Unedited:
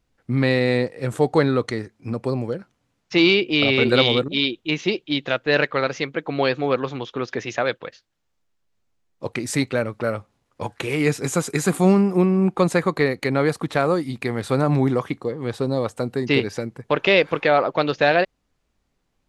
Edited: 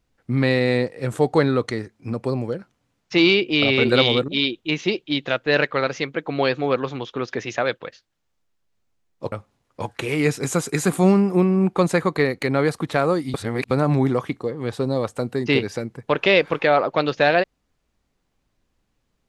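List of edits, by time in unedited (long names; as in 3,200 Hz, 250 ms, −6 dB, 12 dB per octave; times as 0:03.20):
0:09.32–0:10.13: remove
0:14.15–0:14.52: reverse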